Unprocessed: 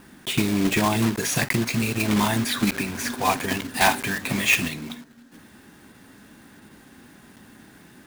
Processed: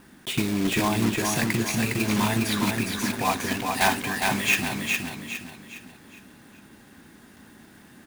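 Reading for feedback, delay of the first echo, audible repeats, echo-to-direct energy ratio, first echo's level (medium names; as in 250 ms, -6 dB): 38%, 410 ms, 4, -3.5 dB, -4.0 dB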